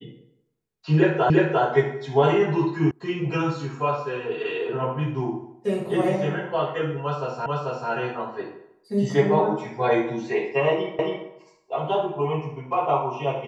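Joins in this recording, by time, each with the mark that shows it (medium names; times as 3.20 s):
1.30 s: repeat of the last 0.35 s
2.91 s: sound stops dead
7.46 s: repeat of the last 0.44 s
10.99 s: repeat of the last 0.27 s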